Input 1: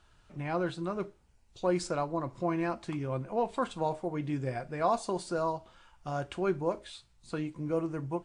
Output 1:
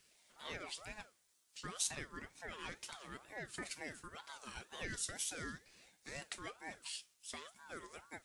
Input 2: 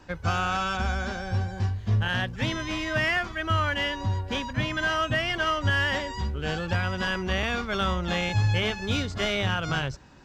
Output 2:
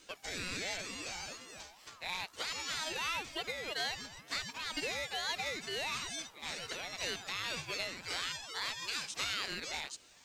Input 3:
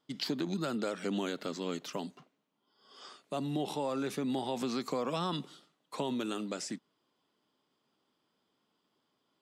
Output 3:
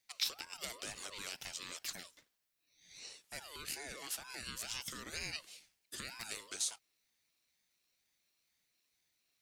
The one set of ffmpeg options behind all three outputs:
-af "acompressor=threshold=0.0398:ratio=6,aderivative,aeval=exprs='val(0)*sin(2*PI*990*n/s+990*0.3/2.1*sin(2*PI*2.1*n/s))':c=same,volume=2.99"

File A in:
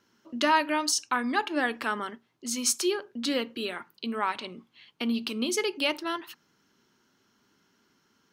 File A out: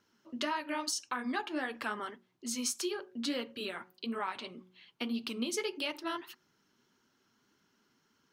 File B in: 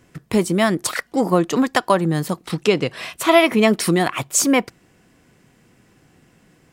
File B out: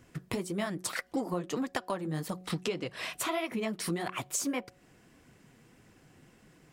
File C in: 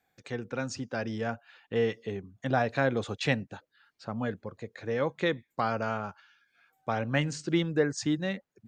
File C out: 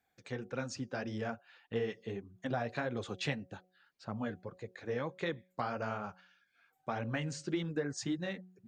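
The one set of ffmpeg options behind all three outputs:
-af "acompressor=threshold=0.0501:ratio=6,flanger=delay=0.1:depth=9:regen=-29:speed=1.7:shape=triangular,bandreject=f=183.9:t=h:w=4,bandreject=f=367.8:t=h:w=4,bandreject=f=551.7:t=h:w=4,bandreject=f=735.6:t=h:w=4,volume=0.891"

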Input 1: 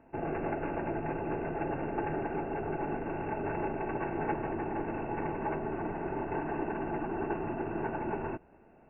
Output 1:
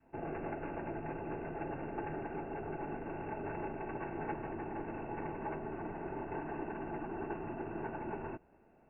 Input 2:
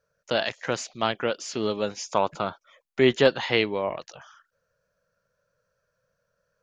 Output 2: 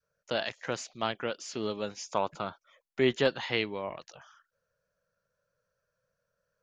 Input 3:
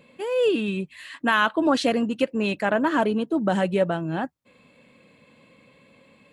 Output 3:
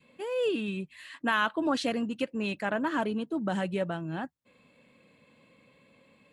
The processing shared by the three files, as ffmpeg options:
-af "adynamicequalizer=threshold=0.0178:dfrequency=530:dqfactor=0.95:tfrequency=530:tqfactor=0.95:attack=5:release=100:ratio=0.375:range=2:mode=cutabove:tftype=bell,volume=0.501"

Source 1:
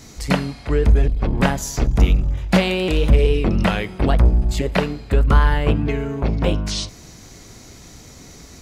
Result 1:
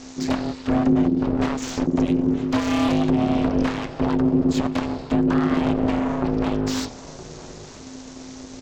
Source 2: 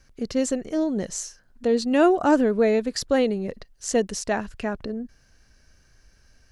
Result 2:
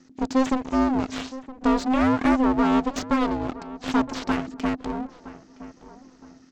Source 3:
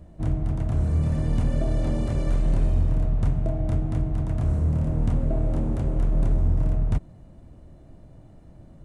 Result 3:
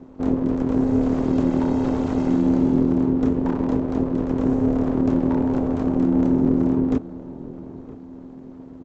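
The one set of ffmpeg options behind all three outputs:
-filter_complex "[0:a]equalizer=f=2100:w=1.3:g=-3.5,alimiter=limit=0.188:level=0:latency=1:release=211,aresample=16000,aeval=exprs='abs(val(0))':c=same,aresample=44100,aeval=exprs='val(0)*sin(2*PI*260*n/s)':c=same,acrossover=split=1600[s0][s1];[s0]crystalizer=i=4:c=0[s2];[s1]asoftclip=type=tanh:threshold=0.0266[s3];[s2][s3]amix=inputs=2:normalize=0,asplit=2[s4][s5];[s5]adelay=967,lowpass=f=1400:p=1,volume=0.178,asplit=2[s6][s7];[s7]adelay=967,lowpass=f=1400:p=1,volume=0.38,asplit=2[s8][s9];[s9]adelay=967,lowpass=f=1400:p=1,volume=0.38[s10];[s4][s6][s8][s10]amix=inputs=4:normalize=0,volume=1.88"

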